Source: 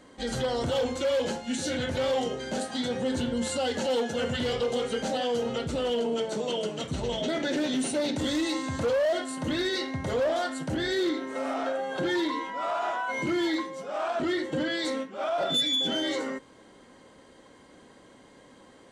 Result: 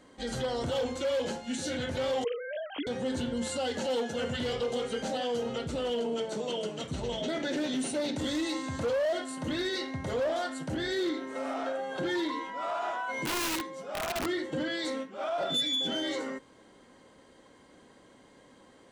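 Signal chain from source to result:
0:02.24–0:02.87: three sine waves on the formant tracks
0:13.25–0:14.26: wrap-around overflow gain 23 dB
level −3.5 dB

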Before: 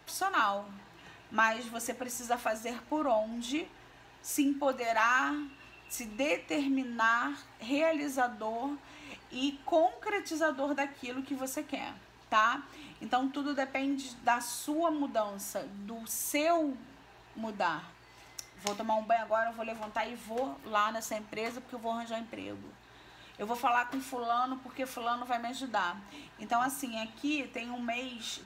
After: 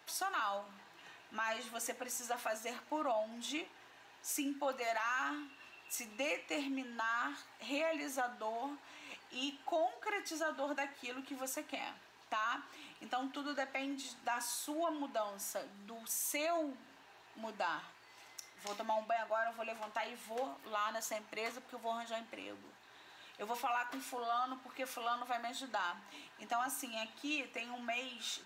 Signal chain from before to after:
high-pass filter 610 Hz 6 dB per octave
brickwall limiter −25.5 dBFS, peak gain reduction 10.5 dB
level −2 dB

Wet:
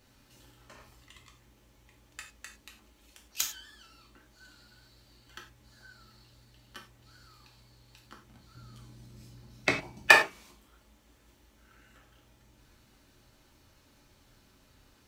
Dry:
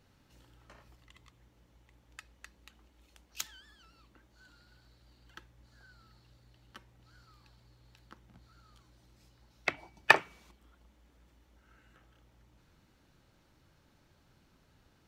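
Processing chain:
0:08.55–0:10.08: parametric band 140 Hz +14 dB 2.3 octaves
reverb whose tail is shaped and stops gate 130 ms falling, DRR −0.5 dB
in parallel at −6.5 dB: hard clipping −15 dBFS, distortion −8 dB
on the sum: high-shelf EQ 3,600 Hz +8 dB
level −3 dB

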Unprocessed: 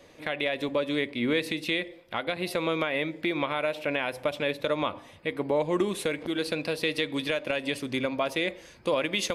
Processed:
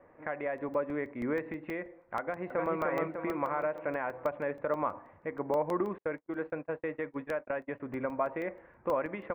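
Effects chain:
0:05.98–0:07.80: noise gate −30 dBFS, range −48 dB
Butterworth low-pass 1,900 Hz 36 dB per octave
parametric band 960 Hz +6.5 dB 1.5 octaves
0:02.20–0:02.77: delay throw 300 ms, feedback 55%, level −2 dB
regular buffer underruns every 0.16 s, samples 64, zero, from 0:00.58
level −7 dB

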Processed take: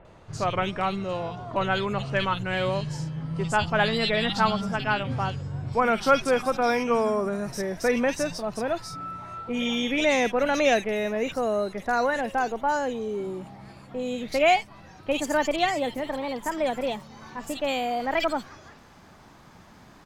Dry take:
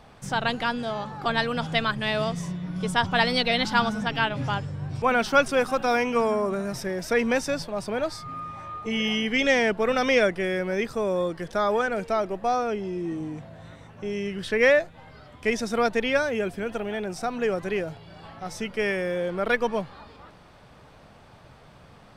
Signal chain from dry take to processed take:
gliding playback speed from 78% → 143%
multiband delay without the direct sound lows, highs 50 ms, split 2,500 Hz

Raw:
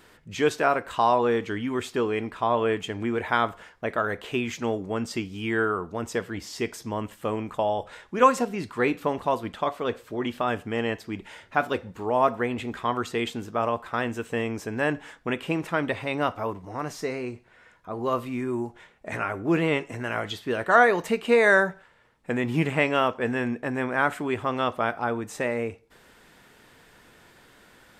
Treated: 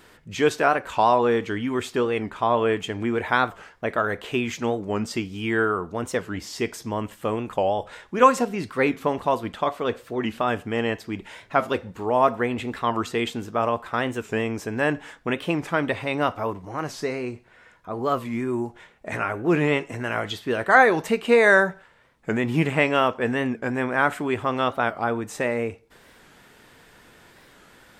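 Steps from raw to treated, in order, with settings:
wow of a warped record 45 rpm, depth 160 cents
level +2.5 dB

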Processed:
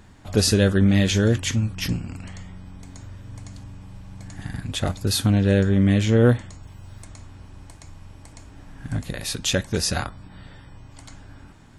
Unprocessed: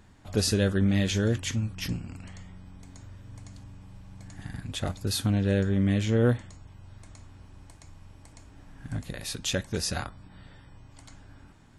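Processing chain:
0:06.63–0:07.05: high-shelf EQ 8,100 Hz +11 dB
level +6.5 dB

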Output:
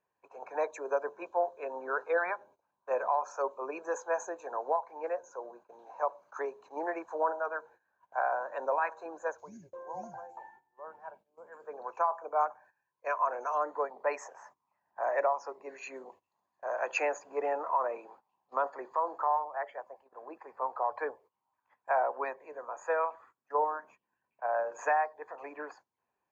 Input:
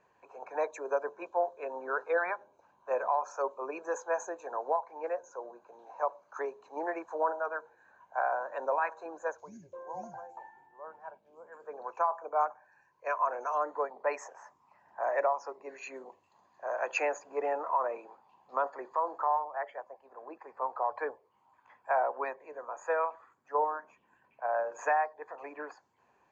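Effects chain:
noise gate −56 dBFS, range −16 dB

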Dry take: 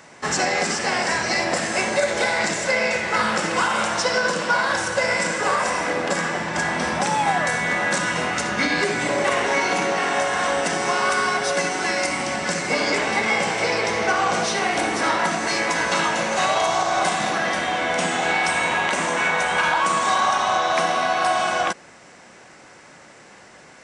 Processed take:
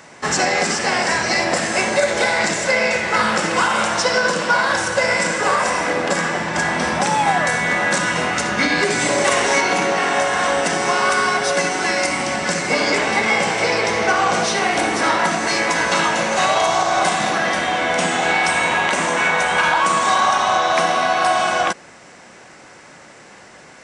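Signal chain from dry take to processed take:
0:08.90–0:09.61: bass and treble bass 0 dB, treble +8 dB
level +3.5 dB

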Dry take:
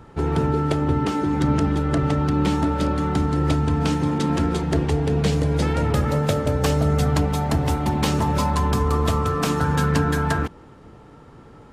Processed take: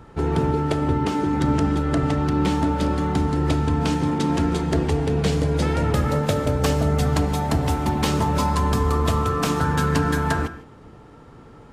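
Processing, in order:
reverb whose tail is shaped and stops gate 180 ms flat, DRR 11.5 dB

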